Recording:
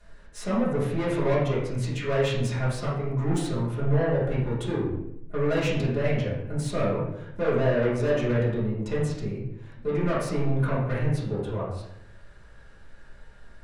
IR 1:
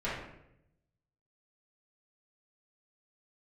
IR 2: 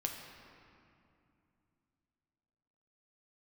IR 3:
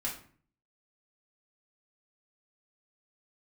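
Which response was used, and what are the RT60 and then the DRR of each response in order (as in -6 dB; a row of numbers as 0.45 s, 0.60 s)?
1; 0.80 s, 2.6 s, 0.45 s; -11.5 dB, 1.5 dB, -5.5 dB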